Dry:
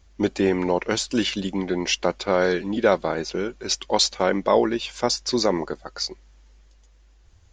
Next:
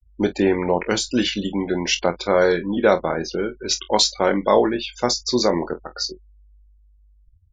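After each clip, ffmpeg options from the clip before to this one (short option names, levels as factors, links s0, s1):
-af "afftfilt=real='re*gte(hypot(re,im),0.0224)':imag='im*gte(hypot(re,im),0.0224)':win_size=1024:overlap=0.75,aecho=1:1:24|46:0.335|0.141,volume=1.26"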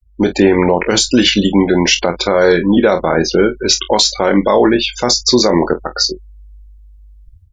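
-af "alimiter=limit=0.211:level=0:latency=1:release=81,dynaudnorm=f=140:g=3:m=3.55,volume=1.33"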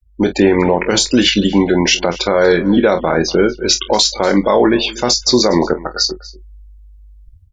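-af "aecho=1:1:241:0.1,volume=0.891"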